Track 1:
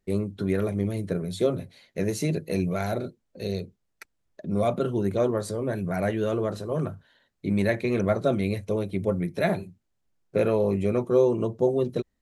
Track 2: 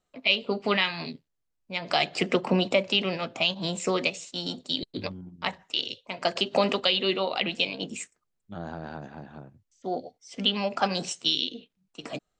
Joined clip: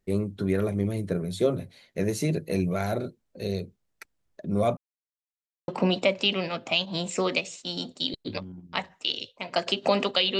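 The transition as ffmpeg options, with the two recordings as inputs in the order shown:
ffmpeg -i cue0.wav -i cue1.wav -filter_complex "[0:a]apad=whole_dur=10.39,atrim=end=10.39,asplit=2[link_01][link_02];[link_01]atrim=end=4.77,asetpts=PTS-STARTPTS,afade=type=out:start_time=4.766:duration=0.004:curve=hsin[link_03];[link_02]atrim=start=4.77:end=5.68,asetpts=PTS-STARTPTS,volume=0[link_04];[1:a]atrim=start=2.37:end=7.08,asetpts=PTS-STARTPTS,afade=type=in:duration=0.004:curve=hsin[link_05];[link_03][link_04][link_05]concat=n=3:v=0:a=1" out.wav

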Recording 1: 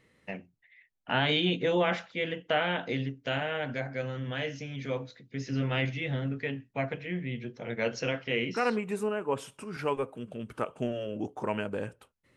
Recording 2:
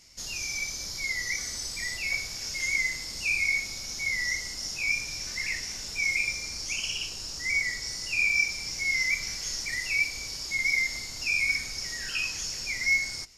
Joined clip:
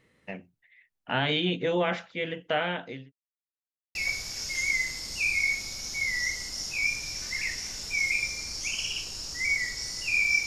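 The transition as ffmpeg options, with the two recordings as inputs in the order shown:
ffmpeg -i cue0.wav -i cue1.wav -filter_complex "[0:a]apad=whole_dur=10.46,atrim=end=10.46,asplit=2[link_01][link_02];[link_01]atrim=end=3.12,asetpts=PTS-STARTPTS,afade=type=out:start_time=2.67:duration=0.45[link_03];[link_02]atrim=start=3.12:end=3.95,asetpts=PTS-STARTPTS,volume=0[link_04];[1:a]atrim=start=2:end=8.51,asetpts=PTS-STARTPTS,afade=type=in:duration=0.004:curve=hsin[link_05];[link_03][link_04][link_05]concat=n=3:v=0:a=1" out.wav

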